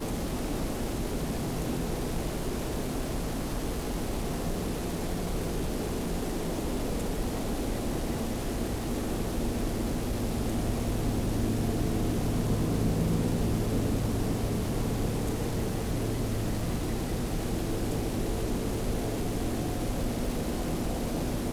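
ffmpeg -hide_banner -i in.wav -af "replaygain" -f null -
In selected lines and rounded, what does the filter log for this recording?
track_gain = +15.2 dB
track_peak = 0.114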